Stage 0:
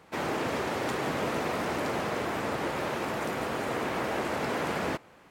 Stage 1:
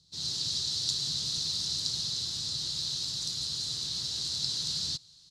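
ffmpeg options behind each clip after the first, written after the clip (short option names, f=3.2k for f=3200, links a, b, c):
-filter_complex "[0:a]firequalizer=gain_entry='entry(150,0);entry(210,-15);entry(590,-29);entry(2300,-28);entry(4000,14);entry(15000,-22)':delay=0.05:min_phase=1,acrossover=split=1000[a][b];[b]dynaudnorm=f=130:g=3:m=10dB[c];[a][c]amix=inputs=2:normalize=0,volume=-4dB"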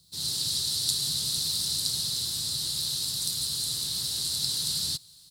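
-af "aexciter=amount=11:drive=5.5:freq=9k,volume=2.5dB"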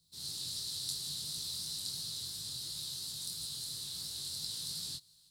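-af "flanger=delay=18:depth=5.7:speed=2.9,volume=-8dB"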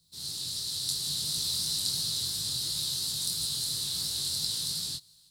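-af "dynaudnorm=f=290:g=7:m=5dB,volume=4.5dB"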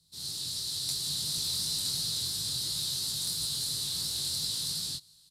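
-filter_complex "[0:a]acrossover=split=620[a][b];[b]asoftclip=type=tanh:threshold=-23dB[c];[a][c]amix=inputs=2:normalize=0,aresample=32000,aresample=44100"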